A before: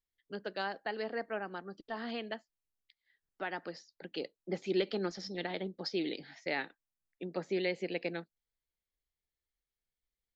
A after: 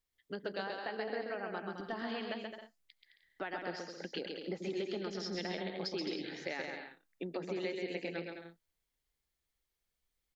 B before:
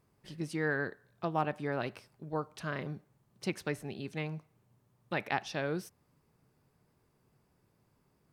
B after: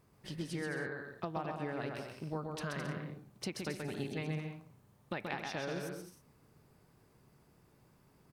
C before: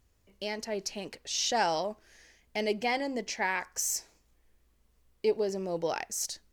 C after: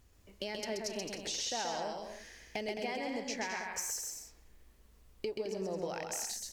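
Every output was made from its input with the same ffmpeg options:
-af "acompressor=threshold=0.00891:ratio=6,aecho=1:1:130|214.5|269.4|305.1|328.3:0.631|0.398|0.251|0.158|0.1,volume=1.58"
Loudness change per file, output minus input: -2.0 LU, -4.0 LU, -6.0 LU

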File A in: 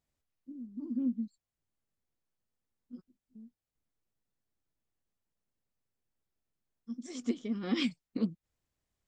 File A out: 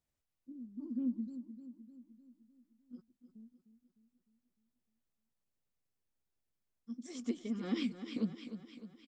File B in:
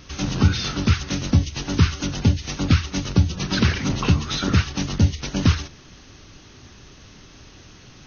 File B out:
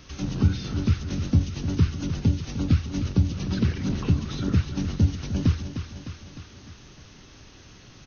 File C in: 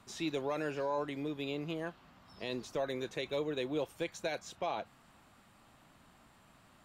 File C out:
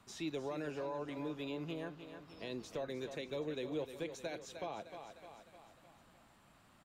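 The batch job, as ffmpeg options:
-filter_complex "[0:a]aecho=1:1:304|608|912|1216|1520|1824:0.282|0.152|0.0822|0.0444|0.024|0.0129,acrossover=split=480[s0][s1];[s1]acompressor=threshold=0.00708:ratio=2[s2];[s0][s2]amix=inputs=2:normalize=0,volume=0.668"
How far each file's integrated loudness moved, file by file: -4.5 LU, -4.0 LU, -5.0 LU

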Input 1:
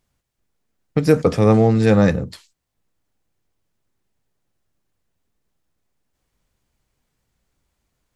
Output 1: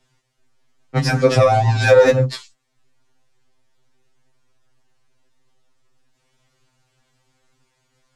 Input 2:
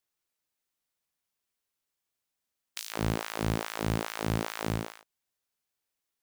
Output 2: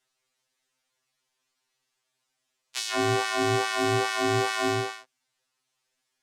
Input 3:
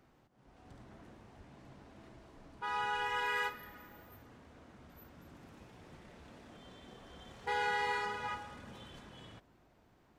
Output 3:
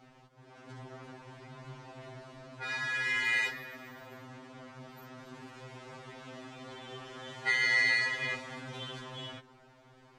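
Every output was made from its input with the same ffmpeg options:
-filter_complex "[0:a]lowpass=7600,lowshelf=f=380:g=-5.5,acrossover=split=260|1500|4500[s0][s1][s2][s3];[s2]asoftclip=type=hard:threshold=0.0355[s4];[s0][s1][s4][s3]amix=inputs=4:normalize=0,alimiter=level_in=3.55:limit=0.891:release=50:level=0:latency=1,afftfilt=real='re*2.45*eq(mod(b,6),0)':imag='im*2.45*eq(mod(b,6),0)':win_size=2048:overlap=0.75,volume=1.26"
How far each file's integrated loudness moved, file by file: +1.0 LU, +7.0 LU, +6.0 LU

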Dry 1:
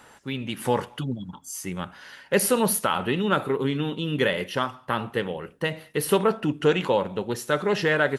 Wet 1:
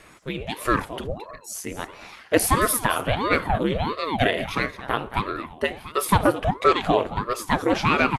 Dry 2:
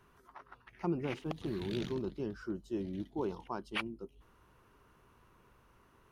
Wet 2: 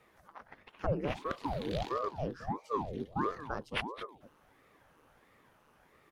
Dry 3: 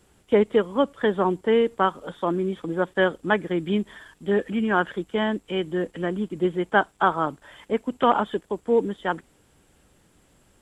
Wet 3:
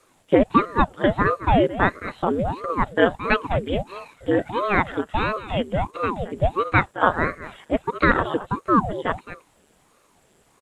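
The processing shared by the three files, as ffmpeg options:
-af "lowshelf=f=200:t=q:w=1.5:g=-9.5,aecho=1:1:220:0.2,aeval=exprs='val(0)*sin(2*PI*470*n/s+470*0.85/1.5*sin(2*PI*1.5*n/s))':c=same,volume=1.58"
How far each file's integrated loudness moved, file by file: +2.0 LU, +2.0 LU, +2.0 LU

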